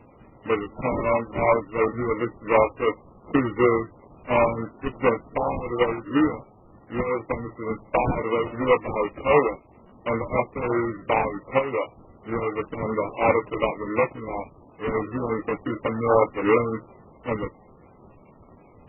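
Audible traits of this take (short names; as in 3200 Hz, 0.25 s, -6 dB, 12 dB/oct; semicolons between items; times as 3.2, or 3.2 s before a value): phasing stages 12, 2.8 Hz, lowest notch 620–2000 Hz; aliases and images of a low sample rate 1600 Hz, jitter 20%; MP3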